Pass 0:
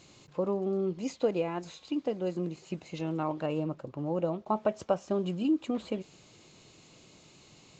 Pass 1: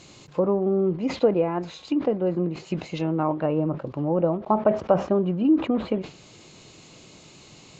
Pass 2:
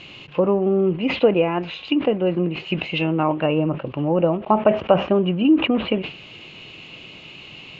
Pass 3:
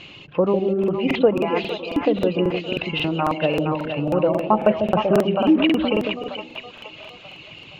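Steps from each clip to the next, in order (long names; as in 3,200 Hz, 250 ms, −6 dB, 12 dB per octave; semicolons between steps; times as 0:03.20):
treble cut that deepens with the level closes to 1,600 Hz, closed at −29 dBFS; level that may fall only so fast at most 150 dB per second; level +8 dB
low-pass with resonance 2,800 Hz, resonance Q 5.7; level +3.5 dB
reverb reduction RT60 1.8 s; echo with a time of its own for lows and highs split 610 Hz, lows 147 ms, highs 468 ms, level −5 dB; regular buffer underruns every 0.27 s, samples 2,048, repeat, from 0:00.79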